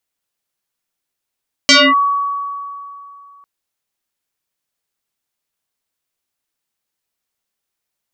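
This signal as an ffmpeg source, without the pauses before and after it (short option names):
-f lavfi -i "aevalsrc='0.631*pow(10,-3*t/2.75)*sin(2*PI*1130*t+6.3*clip(1-t/0.25,0,1)*sin(2*PI*0.76*1130*t))':d=1.75:s=44100"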